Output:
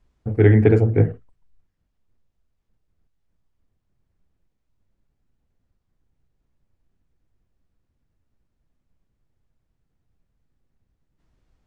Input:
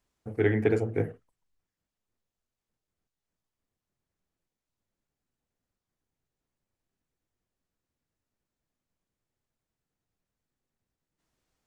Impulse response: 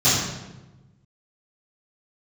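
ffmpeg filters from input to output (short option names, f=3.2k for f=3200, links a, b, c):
-af "aemphasis=mode=reproduction:type=bsi,volume=6dB"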